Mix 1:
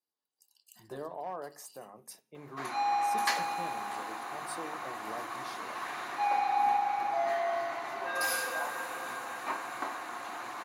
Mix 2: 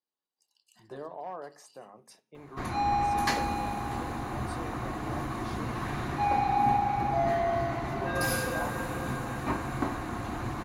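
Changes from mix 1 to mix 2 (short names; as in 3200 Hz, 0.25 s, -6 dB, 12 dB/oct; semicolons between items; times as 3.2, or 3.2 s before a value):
speech: add air absorption 66 m; background: remove HPF 710 Hz 12 dB/oct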